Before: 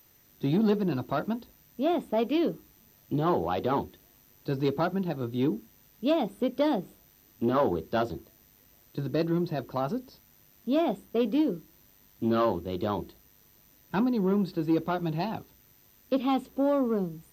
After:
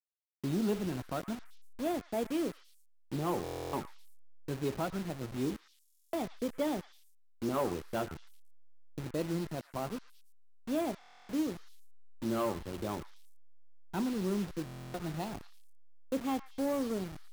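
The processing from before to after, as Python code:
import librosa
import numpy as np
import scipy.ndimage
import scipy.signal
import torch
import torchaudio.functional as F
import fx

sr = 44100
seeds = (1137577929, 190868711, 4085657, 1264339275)

y = fx.delta_hold(x, sr, step_db=-31.5)
y = fx.echo_stepped(y, sr, ms=113, hz=1600.0, octaves=1.4, feedback_pct=70, wet_db=-10.5)
y = fx.buffer_glitch(y, sr, at_s=(3.43, 5.83, 10.99, 14.64), block=1024, repeats=12)
y = y * 10.0 ** (-7.0 / 20.0)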